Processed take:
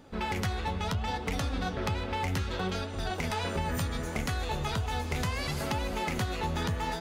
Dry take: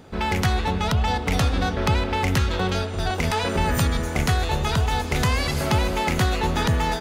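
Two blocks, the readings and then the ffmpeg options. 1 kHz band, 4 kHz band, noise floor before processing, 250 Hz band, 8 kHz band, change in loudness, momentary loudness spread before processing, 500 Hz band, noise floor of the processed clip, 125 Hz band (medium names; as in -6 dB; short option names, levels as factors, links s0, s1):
-9.0 dB, -9.0 dB, -29 dBFS, -9.0 dB, -9.0 dB, -9.5 dB, 2 LU, -9.0 dB, -37 dBFS, -10.0 dB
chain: -af "flanger=delay=3.4:depth=9.3:regen=52:speed=0.69:shape=sinusoidal,acompressor=threshold=0.0631:ratio=6,volume=0.708"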